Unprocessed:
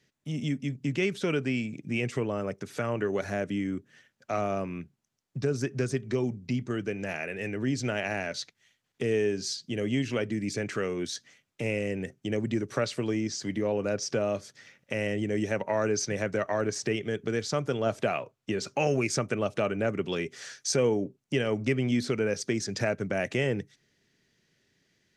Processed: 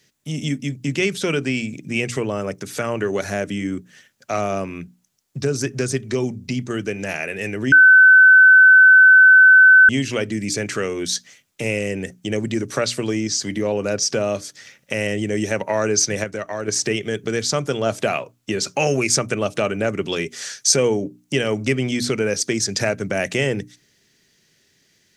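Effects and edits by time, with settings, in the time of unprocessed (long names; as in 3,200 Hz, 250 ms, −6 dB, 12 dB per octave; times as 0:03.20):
0:07.72–0:09.89: beep over 1,520 Hz −13.5 dBFS
0:16.24–0:16.68: clip gain −6 dB
whole clip: high-shelf EQ 4,400 Hz +11.5 dB; mains-hum notches 60/120/180/240/300 Hz; level +6.5 dB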